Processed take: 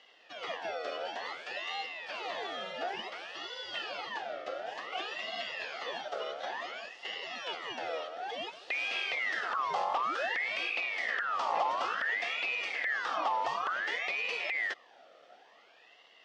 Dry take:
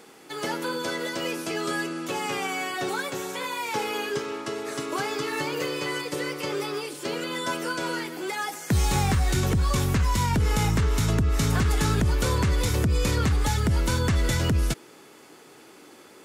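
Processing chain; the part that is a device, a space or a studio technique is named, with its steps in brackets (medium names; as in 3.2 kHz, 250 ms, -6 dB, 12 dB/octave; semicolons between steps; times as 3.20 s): voice changer toy (ring modulator with a swept carrier 1.7 kHz, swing 45%, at 0.56 Hz; cabinet simulation 470–4200 Hz, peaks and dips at 490 Hz +4 dB, 700 Hz +5 dB, 1 kHz -7 dB, 1.5 kHz -9 dB, 2.3 kHz -9 dB, 4 kHz -6 dB); trim -2 dB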